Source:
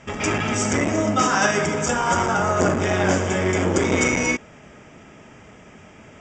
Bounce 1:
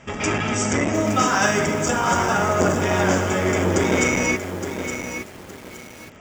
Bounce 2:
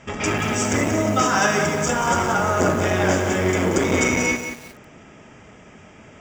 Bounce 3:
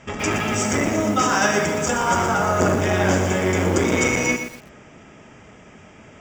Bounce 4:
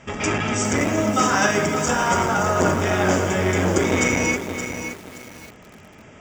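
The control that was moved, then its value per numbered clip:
bit-crushed delay, time: 866 ms, 182 ms, 120 ms, 571 ms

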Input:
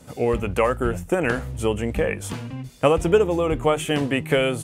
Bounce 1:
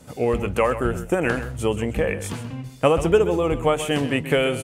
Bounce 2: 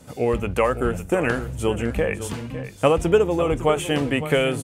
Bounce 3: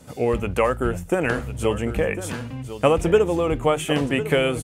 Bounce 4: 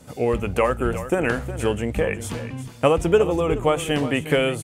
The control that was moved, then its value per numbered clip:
delay, time: 131 ms, 556 ms, 1052 ms, 361 ms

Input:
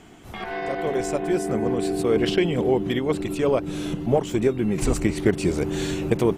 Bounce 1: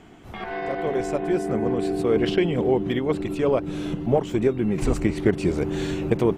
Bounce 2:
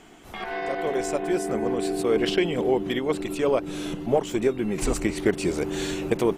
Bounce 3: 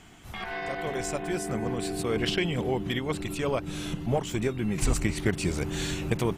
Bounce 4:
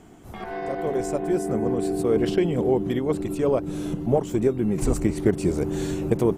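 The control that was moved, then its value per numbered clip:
peaking EQ, frequency: 11 kHz, 100 Hz, 390 Hz, 2.9 kHz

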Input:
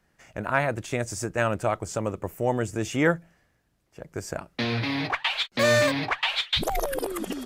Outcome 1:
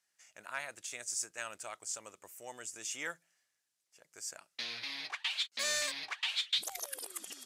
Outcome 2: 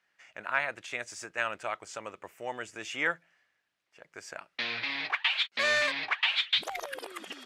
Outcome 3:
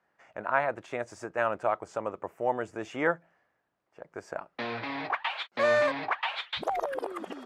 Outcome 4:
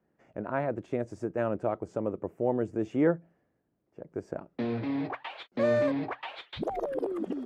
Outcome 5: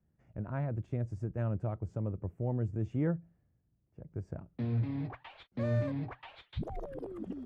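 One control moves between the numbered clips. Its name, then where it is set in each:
band-pass filter, frequency: 7.7 kHz, 2.5 kHz, 940 Hz, 340 Hz, 100 Hz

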